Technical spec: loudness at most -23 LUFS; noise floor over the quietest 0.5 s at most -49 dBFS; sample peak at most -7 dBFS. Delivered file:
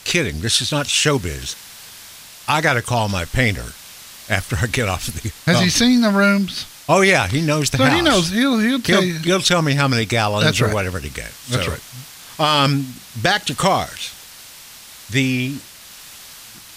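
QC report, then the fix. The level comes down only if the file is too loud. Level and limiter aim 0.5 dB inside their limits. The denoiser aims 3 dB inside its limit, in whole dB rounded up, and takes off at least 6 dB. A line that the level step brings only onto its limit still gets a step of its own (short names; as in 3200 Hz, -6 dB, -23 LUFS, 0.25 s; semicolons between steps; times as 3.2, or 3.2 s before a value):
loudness -17.5 LUFS: fail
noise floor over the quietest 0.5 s -40 dBFS: fail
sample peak -3.0 dBFS: fail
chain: denoiser 6 dB, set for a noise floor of -40 dBFS; gain -6 dB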